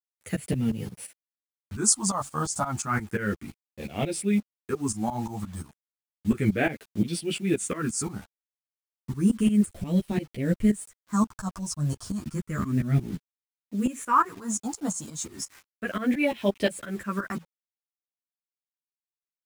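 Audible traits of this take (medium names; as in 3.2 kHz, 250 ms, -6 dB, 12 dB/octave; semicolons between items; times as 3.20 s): phasing stages 4, 0.32 Hz, lowest notch 390–1200 Hz; a quantiser's noise floor 8-bit, dither none; tremolo saw up 5.7 Hz, depth 90%; a shimmering, thickened sound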